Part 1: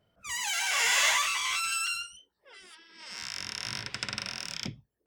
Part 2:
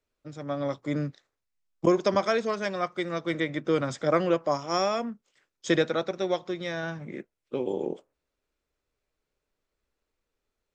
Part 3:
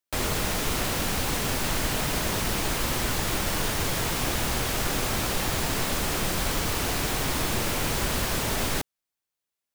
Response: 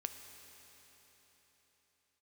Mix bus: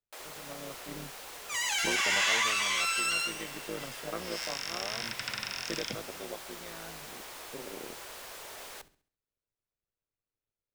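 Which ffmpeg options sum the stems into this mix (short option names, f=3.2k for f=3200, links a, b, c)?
-filter_complex "[0:a]acrossover=split=5600[a][b];[b]acompressor=threshold=-37dB:ratio=4:attack=1:release=60[c];[a][c]amix=inputs=2:normalize=0,adelay=1250,volume=-0.5dB,asplit=2[d][e];[e]volume=-3dB[f];[1:a]tremolo=f=110:d=0.889,volume=-11dB[g];[2:a]volume=-16dB,asplit=2[h][i];[i]volume=-19dB[j];[d][h]amix=inputs=2:normalize=0,highpass=f=420:w=0.5412,highpass=f=420:w=1.3066,alimiter=level_in=2dB:limit=-24dB:level=0:latency=1:release=30,volume=-2dB,volume=0dB[k];[3:a]atrim=start_sample=2205[l];[f][l]afir=irnorm=-1:irlink=0[m];[j]aecho=0:1:67|134|201|268|335:1|0.38|0.144|0.0549|0.0209[n];[g][k][m][n]amix=inputs=4:normalize=0"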